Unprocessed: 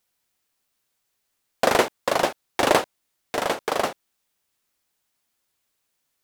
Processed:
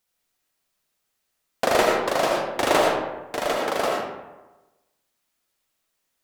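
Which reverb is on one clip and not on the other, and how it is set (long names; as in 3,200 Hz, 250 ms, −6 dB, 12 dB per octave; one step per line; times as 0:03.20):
comb and all-pass reverb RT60 1.1 s, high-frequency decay 0.55×, pre-delay 40 ms, DRR −1.5 dB
level −3 dB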